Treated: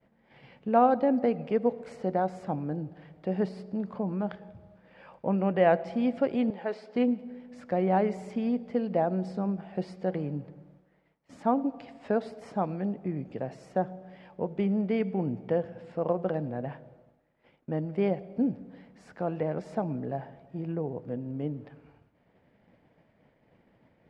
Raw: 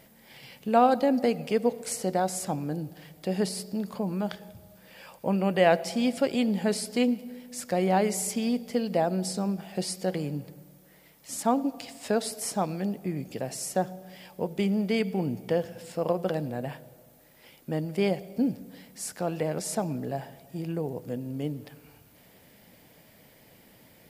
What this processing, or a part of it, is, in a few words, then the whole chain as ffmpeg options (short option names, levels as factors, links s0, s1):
hearing-loss simulation: -filter_complex "[0:a]asettb=1/sr,asplit=3[s0][s1][s2];[s0]atrim=end=6.504[s3];[s1]atrim=start=6.5:end=6.96,asetpts=PTS-STARTPTS,afade=t=in:d=0.004:c=qsin,afade=t=out:st=0.456:d=0.004:c=qsin,acrossover=split=390 7100:gain=0.112 1 0.2[s4][s5][s6];[s4][s5][s6]amix=inputs=3:normalize=0[s7];[s2]atrim=start=6.956[s8];[s3][s7]acrossfade=d=0.004:c1=hsin:c2=qsin[s9];[s9][s8]acrossfade=d=0.004:c1=qsin:c2=hsin,lowpass=1700,agate=range=0.0224:threshold=0.00251:ratio=3:detection=peak,volume=0.891"